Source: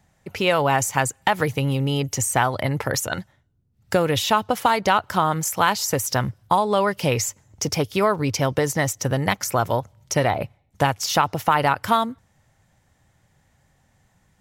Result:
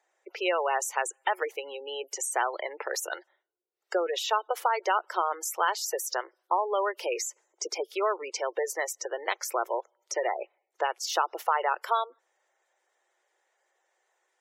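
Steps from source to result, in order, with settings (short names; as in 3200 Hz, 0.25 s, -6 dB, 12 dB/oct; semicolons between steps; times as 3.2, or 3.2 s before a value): Chebyshev high-pass 350 Hz, order 6; spectral gate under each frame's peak -20 dB strong; gain -6.5 dB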